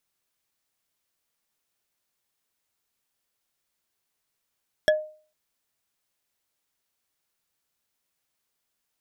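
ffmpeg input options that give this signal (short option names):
-f lavfi -i "aevalsrc='0.211*pow(10,-3*t/0.42)*sin(2*PI*616*t)+0.133*pow(10,-3*t/0.124)*sin(2*PI*1698.3*t)+0.0841*pow(10,-3*t/0.055)*sin(2*PI*3328.9*t)+0.0531*pow(10,-3*t/0.03)*sin(2*PI*5502.7*t)+0.0335*pow(10,-3*t/0.019)*sin(2*PI*8217.4*t)':d=0.45:s=44100"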